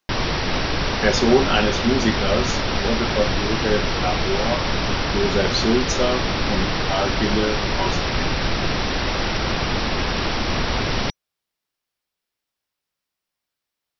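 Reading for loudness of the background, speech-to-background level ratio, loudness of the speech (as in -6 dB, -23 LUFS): -22.5 LUFS, -1.0 dB, -23.5 LUFS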